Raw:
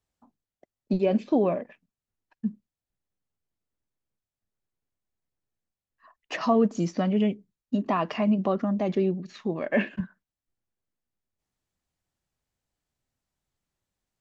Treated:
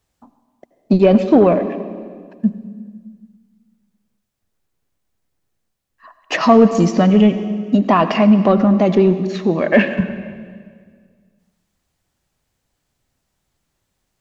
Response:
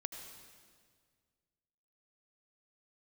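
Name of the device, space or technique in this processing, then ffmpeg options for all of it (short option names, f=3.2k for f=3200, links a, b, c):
saturated reverb return: -filter_complex "[0:a]asplit=2[a][b];[1:a]atrim=start_sample=2205[c];[b][c]afir=irnorm=-1:irlink=0,asoftclip=type=tanh:threshold=-20dB,volume=2.5dB[d];[a][d]amix=inputs=2:normalize=0,volume=7dB"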